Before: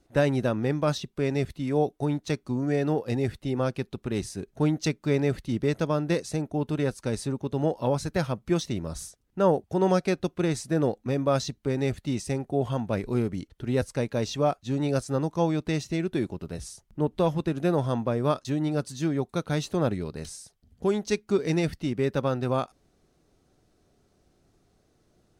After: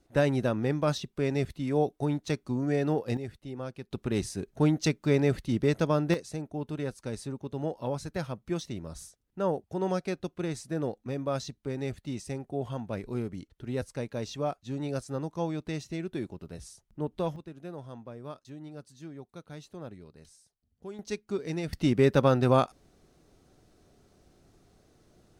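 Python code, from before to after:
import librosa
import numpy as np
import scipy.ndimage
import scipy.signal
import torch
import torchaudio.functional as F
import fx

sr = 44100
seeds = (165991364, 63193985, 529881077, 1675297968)

y = fx.gain(x, sr, db=fx.steps((0.0, -2.0), (3.17, -11.0), (3.91, 0.0), (6.14, -7.0), (17.36, -17.0), (20.99, -8.0), (21.73, 4.0)))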